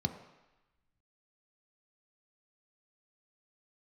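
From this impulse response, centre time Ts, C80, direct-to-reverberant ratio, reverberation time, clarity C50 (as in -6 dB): 15 ms, 11.5 dB, 6.0 dB, 1.0 s, 10.0 dB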